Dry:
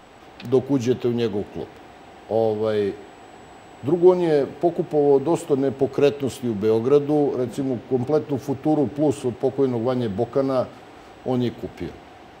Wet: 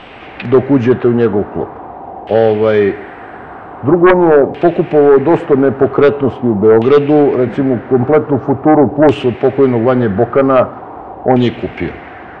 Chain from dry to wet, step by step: 5.79–6.85 s: dynamic bell 3.1 kHz, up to +8 dB, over -46 dBFS, Q 1.7; LFO low-pass saw down 0.44 Hz 780–2900 Hz; sine folder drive 8 dB, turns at -1.5 dBFS

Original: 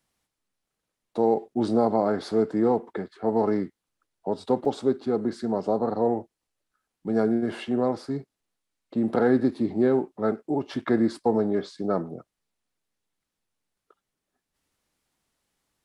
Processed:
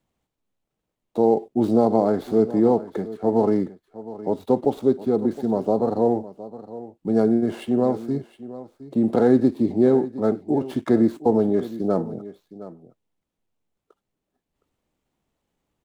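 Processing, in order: median filter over 9 samples; peaking EQ 1.6 kHz -8.5 dB 1.5 oct; on a send: delay 714 ms -16 dB; on the sum: trim +5 dB

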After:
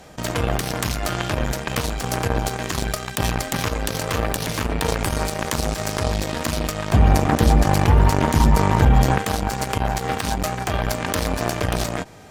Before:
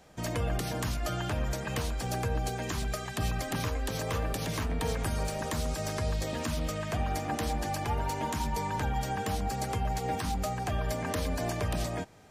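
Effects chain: 6.91–9.18 s: bass shelf 280 Hz +11.5 dB; Chebyshev shaper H 5 -44 dB, 7 -17 dB, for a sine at -12 dBFS; level flattener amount 50%; trim +6 dB

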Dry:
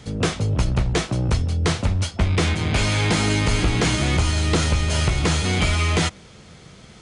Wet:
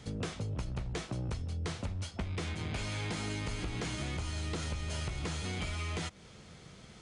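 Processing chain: compression 6:1, threshold -26 dBFS, peak gain reduction 11.5 dB; trim -8 dB

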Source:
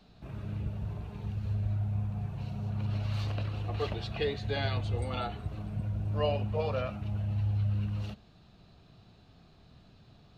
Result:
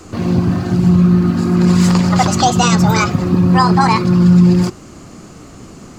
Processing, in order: peaking EQ 1.2 kHz -3.5 dB 0.3 oct; speed mistake 45 rpm record played at 78 rpm; loudness maximiser +22.5 dB; trim -1 dB

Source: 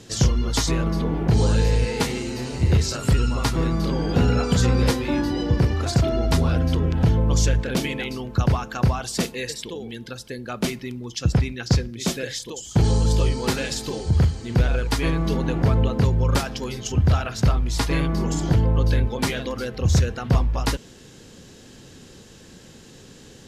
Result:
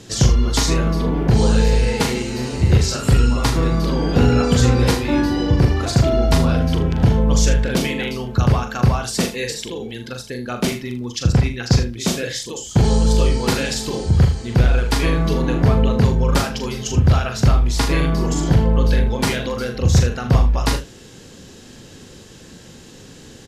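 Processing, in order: early reflections 41 ms -7 dB, 78 ms -12.5 dB; trim +3.5 dB

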